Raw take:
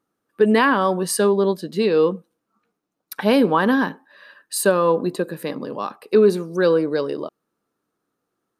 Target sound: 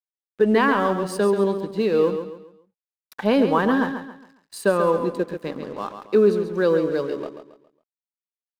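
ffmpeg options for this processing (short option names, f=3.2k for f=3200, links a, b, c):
-af "aemphasis=mode=reproduction:type=50kf,aeval=exprs='sgn(val(0))*max(abs(val(0))-0.0075,0)':c=same,aecho=1:1:137|274|411|548:0.376|0.132|0.046|0.0161,volume=-2dB"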